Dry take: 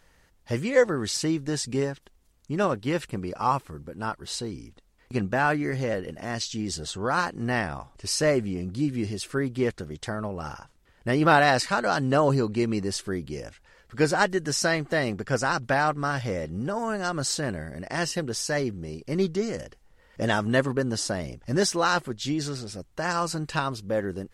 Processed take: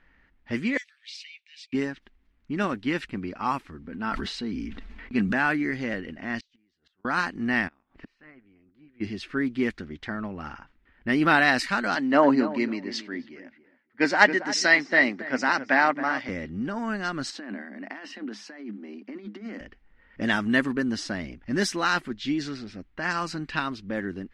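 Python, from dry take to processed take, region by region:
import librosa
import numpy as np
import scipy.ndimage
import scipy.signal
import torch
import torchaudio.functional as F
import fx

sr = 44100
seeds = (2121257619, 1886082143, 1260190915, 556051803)

y = fx.chain(x, sr, fx.cheby1_highpass(hz=2300.0, order=5),
    fx.high_shelf(hz=5700.0, db=-6.5), at=(0.77, 1.73))
y = fx.chain(y, sr, fx.comb(ms=4.5, depth=0.32),
    fx.sustainer(db_per_s=24.0), at=(3.81, 5.33))
y = fx.chain(y, sr, fx.gate_flip(shuts_db=-25.0, range_db=-32),
    fx.low_shelf(hz=430.0, db=-12.0), at=(6.4, 7.05))
y = fx.spec_clip(y, sr, under_db=15, at=(7.67, 9.0), fade=0.02)
y = fx.lowpass(y, sr, hz=2500.0, slope=6, at=(7.67, 9.0), fade=0.02)
y = fx.gate_flip(y, sr, shuts_db=-28.0, range_db=-28, at=(7.67, 9.0), fade=0.02)
y = fx.chain(y, sr, fx.cabinet(low_hz=250.0, low_slope=12, high_hz=6900.0, hz=(260.0, 600.0, 900.0, 2000.0, 4600.0), db=(6, 7, 7, 7, 3)),
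    fx.echo_filtered(ms=277, feedback_pct=25, hz=2000.0, wet_db=-10),
    fx.band_widen(depth_pct=70), at=(11.95, 16.29))
y = fx.chain(y, sr, fx.cheby_ripple_highpass(hz=200.0, ripple_db=6),
    fx.over_compress(threshold_db=-37.0, ratio=-1.0), at=(17.3, 19.61))
y = fx.env_lowpass(y, sr, base_hz=2300.0, full_db=-18.5)
y = fx.graphic_eq_10(y, sr, hz=(125, 250, 500, 1000, 2000, 8000), db=(-11, 8, -9, -3, 6, -7))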